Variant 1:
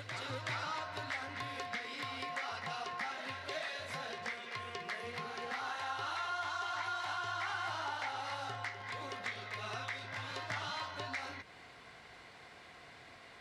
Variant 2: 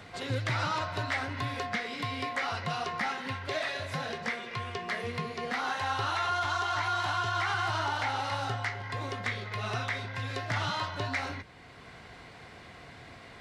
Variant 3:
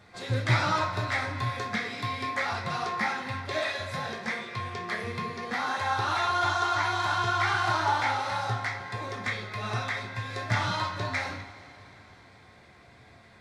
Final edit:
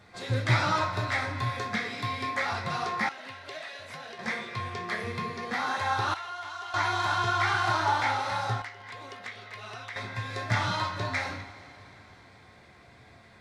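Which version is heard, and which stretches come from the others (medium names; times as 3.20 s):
3
3.09–4.19 s: from 1
6.14–6.74 s: from 1
8.62–9.96 s: from 1
not used: 2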